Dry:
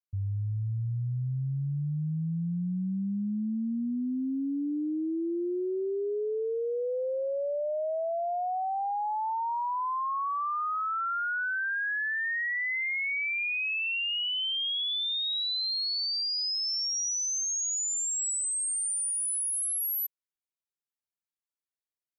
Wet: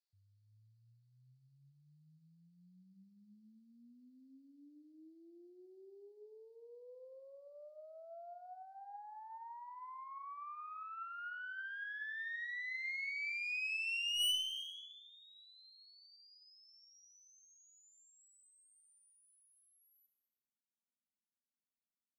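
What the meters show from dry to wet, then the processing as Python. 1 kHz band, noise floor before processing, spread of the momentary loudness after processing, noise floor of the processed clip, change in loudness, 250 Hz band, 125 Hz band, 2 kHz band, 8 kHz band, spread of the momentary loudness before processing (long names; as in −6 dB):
−19.0 dB, below −85 dBFS, 23 LU, below −85 dBFS, −11.0 dB, −31.5 dB, below −35 dB, −11.5 dB, −25.5 dB, 4 LU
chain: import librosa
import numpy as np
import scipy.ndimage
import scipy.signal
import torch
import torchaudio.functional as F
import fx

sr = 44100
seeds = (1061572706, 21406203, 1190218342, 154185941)

y = fx.filter_sweep_bandpass(x, sr, from_hz=4500.0, to_hz=230.0, start_s=14.13, end_s=15.06, q=5.8)
y = fx.tube_stage(y, sr, drive_db=43.0, bias=0.45)
y = fx.rev_gated(y, sr, seeds[0], gate_ms=470, shape='falling', drr_db=9.5)
y = y * librosa.db_to_amplitude(10.5)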